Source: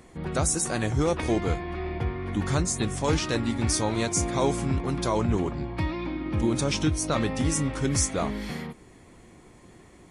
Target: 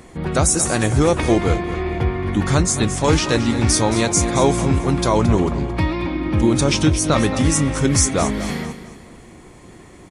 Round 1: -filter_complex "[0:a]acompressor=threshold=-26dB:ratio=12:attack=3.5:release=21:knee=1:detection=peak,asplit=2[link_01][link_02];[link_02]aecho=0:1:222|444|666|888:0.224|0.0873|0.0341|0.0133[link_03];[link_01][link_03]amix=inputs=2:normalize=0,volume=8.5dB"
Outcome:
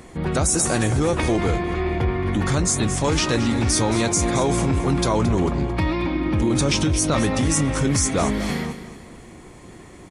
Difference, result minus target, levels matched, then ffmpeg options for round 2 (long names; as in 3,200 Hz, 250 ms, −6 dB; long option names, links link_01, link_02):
downward compressor: peak gain reduction +8 dB
-filter_complex "[0:a]asplit=2[link_01][link_02];[link_02]aecho=0:1:222|444|666|888:0.224|0.0873|0.0341|0.0133[link_03];[link_01][link_03]amix=inputs=2:normalize=0,volume=8.5dB"